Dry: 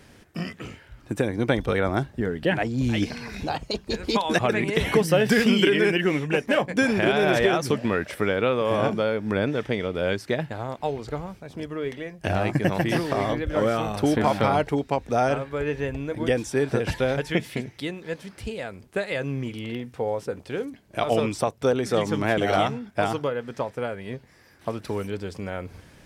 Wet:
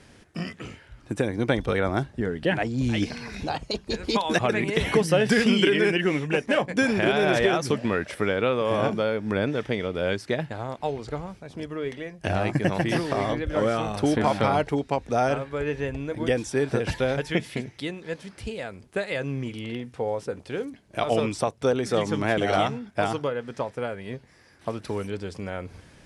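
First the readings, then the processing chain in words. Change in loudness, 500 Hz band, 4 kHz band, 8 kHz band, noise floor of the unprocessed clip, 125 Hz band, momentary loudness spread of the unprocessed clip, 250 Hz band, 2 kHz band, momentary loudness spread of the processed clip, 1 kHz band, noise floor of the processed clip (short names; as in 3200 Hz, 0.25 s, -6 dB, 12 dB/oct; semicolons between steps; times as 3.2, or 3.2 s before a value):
-1.0 dB, -1.0 dB, -0.5 dB, -0.5 dB, -53 dBFS, -1.0 dB, 13 LU, -1.0 dB, -1.0 dB, 13 LU, -1.0 dB, -54 dBFS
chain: elliptic low-pass 11000 Hz, stop band 50 dB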